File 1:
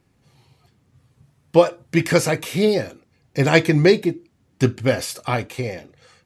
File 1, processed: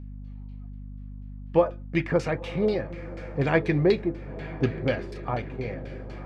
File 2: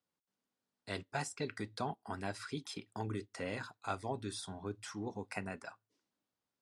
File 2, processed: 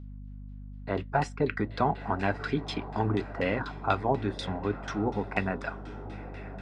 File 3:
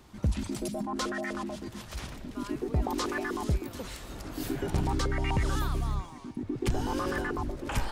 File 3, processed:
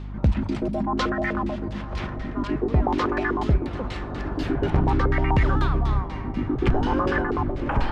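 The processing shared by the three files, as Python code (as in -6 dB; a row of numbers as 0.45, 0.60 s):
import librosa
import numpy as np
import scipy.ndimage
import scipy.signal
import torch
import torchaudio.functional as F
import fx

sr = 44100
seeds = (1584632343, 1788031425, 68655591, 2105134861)

y = fx.echo_diffused(x, sr, ms=1021, feedback_pct=48, wet_db=-14)
y = fx.filter_lfo_lowpass(y, sr, shape='saw_down', hz=4.1, low_hz=810.0, high_hz=3900.0, q=1.1)
y = fx.add_hum(y, sr, base_hz=50, snr_db=11)
y = librosa.util.normalize(y) * 10.0 ** (-9 / 20.0)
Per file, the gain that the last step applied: -7.5, +11.5, +7.5 dB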